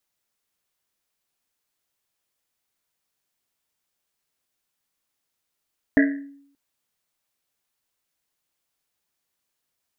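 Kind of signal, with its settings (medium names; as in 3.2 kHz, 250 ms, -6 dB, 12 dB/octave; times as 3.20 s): Risset drum length 0.58 s, pitch 280 Hz, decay 0.69 s, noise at 1.8 kHz, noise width 370 Hz, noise 30%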